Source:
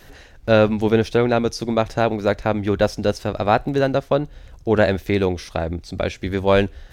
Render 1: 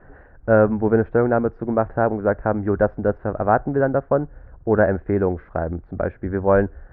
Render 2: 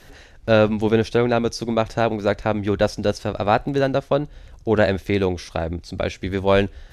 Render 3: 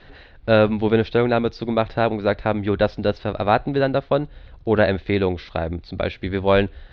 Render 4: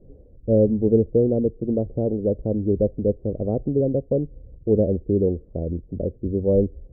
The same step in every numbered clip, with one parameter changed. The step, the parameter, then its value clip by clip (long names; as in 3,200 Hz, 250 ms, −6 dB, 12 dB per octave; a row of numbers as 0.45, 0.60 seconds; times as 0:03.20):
Chebyshev low-pass filter, frequency: 1,600, 12,000, 4,100, 510 Hertz